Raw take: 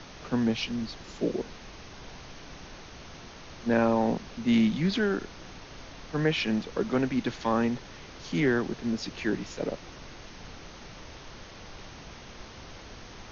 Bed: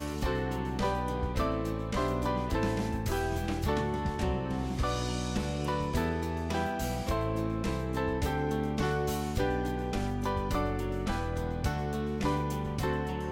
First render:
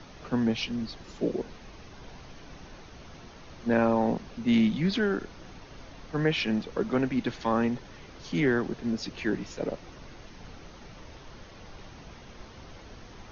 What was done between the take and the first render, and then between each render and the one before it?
noise reduction 6 dB, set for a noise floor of -47 dBFS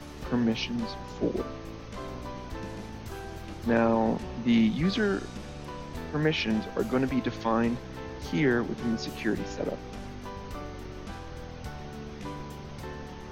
add bed -9 dB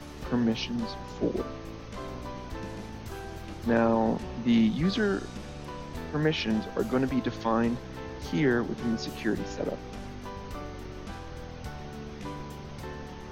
dynamic bell 2.3 kHz, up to -4 dB, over -49 dBFS, Q 3.2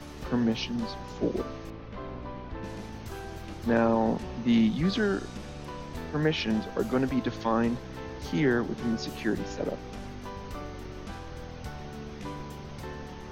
1.70–2.64 s: distance through air 250 m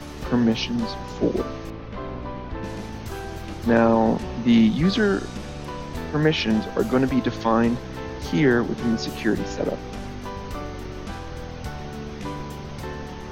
trim +6.5 dB

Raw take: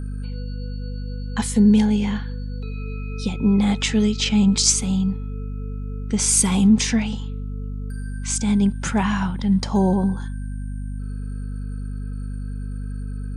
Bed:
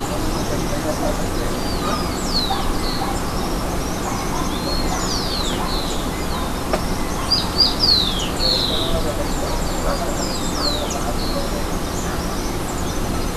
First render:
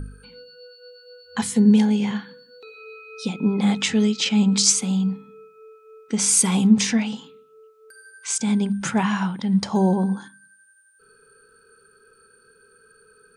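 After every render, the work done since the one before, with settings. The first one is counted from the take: de-hum 50 Hz, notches 5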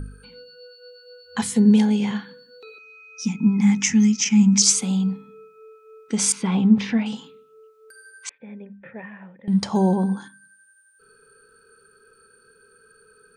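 2.78–4.62 s: FFT filter 130 Hz 0 dB, 230 Hz +4 dB, 400 Hz -14 dB, 630 Hz -24 dB, 890 Hz -2 dB, 1.3 kHz -9 dB, 2.1 kHz +3 dB, 4.1 kHz -15 dB, 5.9 kHz +12 dB, 8.6 kHz -6 dB; 6.32–7.06 s: distance through air 320 m; 8.29–9.48 s: cascade formant filter e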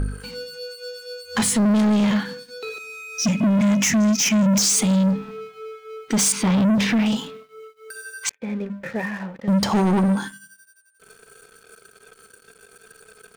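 peak limiter -14.5 dBFS, peak gain reduction 10.5 dB; waveshaping leveller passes 3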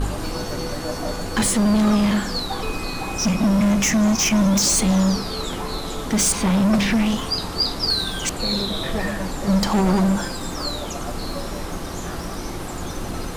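add bed -6.5 dB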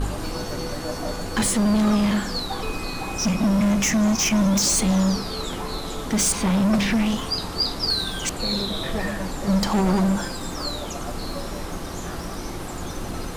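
trim -2 dB

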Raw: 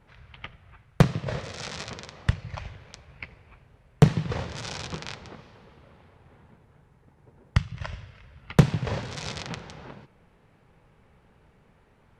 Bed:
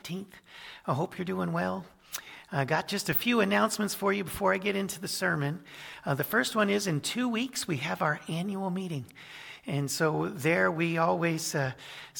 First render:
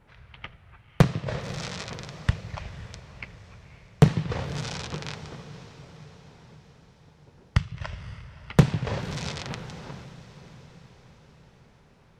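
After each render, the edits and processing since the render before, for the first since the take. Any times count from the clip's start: echo that smears into a reverb 541 ms, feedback 57%, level -15 dB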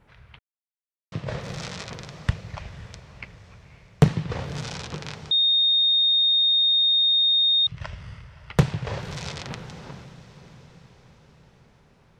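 0.39–1.12 s: mute; 5.31–7.67 s: bleep 3.69 kHz -16.5 dBFS; 8.25–9.33 s: peaking EQ 240 Hz -7.5 dB 0.72 oct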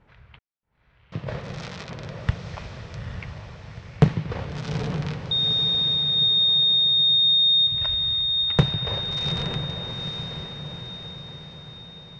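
distance through air 110 m; echo that smears into a reverb 855 ms, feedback 52%, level -5.5 dB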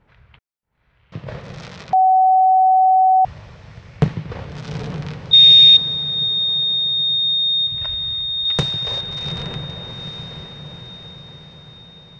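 1.93–3.25 s: bleep 753 Hz -9.5 dBFS; 5.33–5.77 s: resonant high shelf 1.8 kHz +11.5 dB, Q 3; 8.45–9.01 s: tone controls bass -4 dB, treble +13 dB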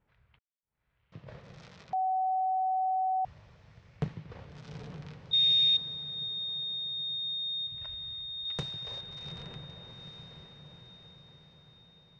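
trim -16.5 dB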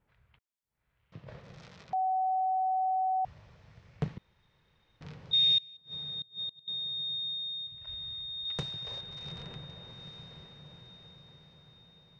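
4.18–5.01 s: room tone; 5.58–6.68 s: inverted gate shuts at -31 dBFS, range -26 dB; 7.18–7.87 s: fade out, to -8 dB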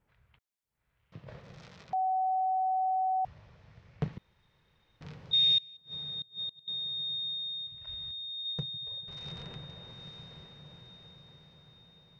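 3.27–4.13 s: distance through air 56 m; 8.11–9.08 s: spectral contrast enhancement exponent 1.6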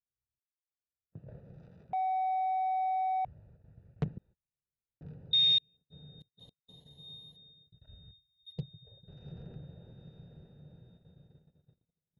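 local Wiener filter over 41 samples; gate -58 dBFS, range -31 dB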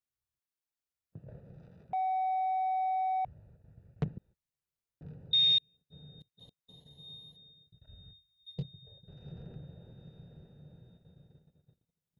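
7.96–8.98 s: doubling 22 ms -6.5 dB

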